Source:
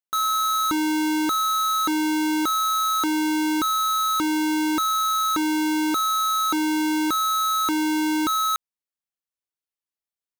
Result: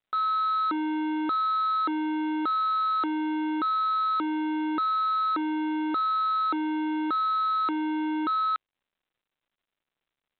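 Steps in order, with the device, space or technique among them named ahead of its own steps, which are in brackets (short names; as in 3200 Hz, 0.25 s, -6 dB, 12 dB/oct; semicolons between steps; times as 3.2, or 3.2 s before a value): telephone (BPF 300–3200 Hz; soft clip -22 dBFS, distortion -16 dB; µ-law 64 kbps 8000 Hz)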